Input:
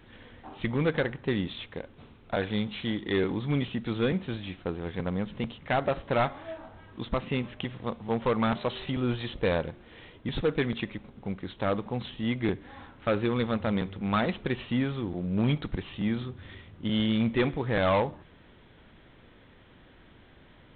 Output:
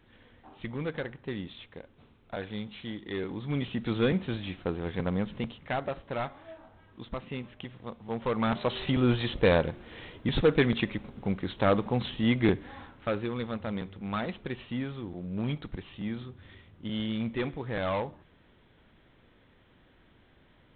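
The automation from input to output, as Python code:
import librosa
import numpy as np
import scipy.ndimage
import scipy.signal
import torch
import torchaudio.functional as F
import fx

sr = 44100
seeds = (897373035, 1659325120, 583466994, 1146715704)

y = fx.gain(x, sr, db=fx.line((3.24, -7.5), (3.87, 1.0), (5.2, 1.0), (6.02, -7.5), (7.95, -7.5), (8.91, 4.0), (12.54, 4.0), (13.29, -6.0)))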